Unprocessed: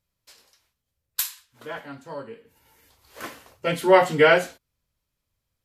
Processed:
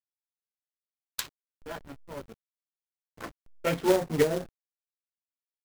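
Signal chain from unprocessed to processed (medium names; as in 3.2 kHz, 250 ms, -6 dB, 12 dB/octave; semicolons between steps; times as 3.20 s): low-pass that closes with the level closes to 350 Hz, closed at -12.5 dBFS; hysteresis with a dead band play -29.5 dBFS; companded quantiser 4-bit; trim -2.5 dB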